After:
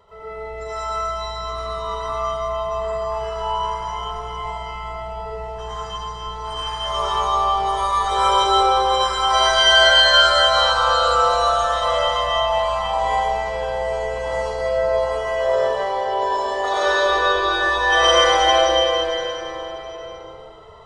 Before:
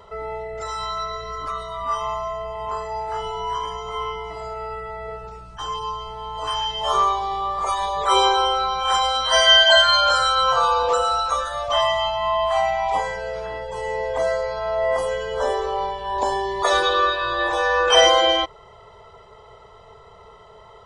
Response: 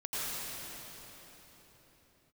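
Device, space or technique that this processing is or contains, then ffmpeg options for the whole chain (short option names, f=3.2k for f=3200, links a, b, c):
cathedral: -filter_complex "[0:a]asettb=1/sr,asplit=3[a][b][c];[a]atrim=end=14.804[d];[b]atrim=start=14.8:end=16.84,asetpts=PTS-STARTPTS,afade=t=in:d=0.004:c=qsin,afade=t=out:st=2.036:d=0.004:c=qsin,acrossover=split=240 7900:gain=0.2 1 0.0891[e][f][g];[e][f][g]amix=inputs=3:normalize=0[h];[c]atrim=start=16.836[i];[d][h]acrossfade=d=0.004:c1=hsin:c2=qsin[j];[j][i]acrossfade=d=0.004:c1=qsin:c2=hsin[k];[1:a]atrim=start_sample=2205[l];[k][l]afir=irnorm=-1:irlink=0,volume=-4dB"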